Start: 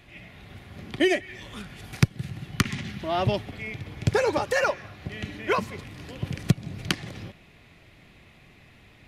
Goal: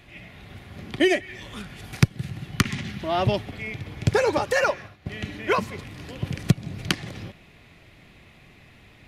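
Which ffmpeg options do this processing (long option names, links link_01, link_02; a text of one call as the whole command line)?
ffmpeg -i in.wav -filter_complex "[0:a]asettb=1/sr,asplit=3[link_01][link_02][link_03];[link_01]atrim=end=4.674[link_04];[link_02]atrim=start=4.67:end=5.22,asetpts=PTS-STARTPTS,afade=type=in:duration=0.004:curve=qsin,afade=type=out:start_time=0.546:duration=0.004:curve=qsin,agate=range=-33dB:threshold=-36dB:ratio=3:detection=peak[link_05];[link_03]atrim=start=5.216[link_06];[link_04][link_05]acrossfade=duration=0.004:curve1=hsin:curve2=qsin[link_07];[link_07][link_06]acrossfade=duration=0.004:curve1=qsin:curve2=hsin,volume=2dB" out.wav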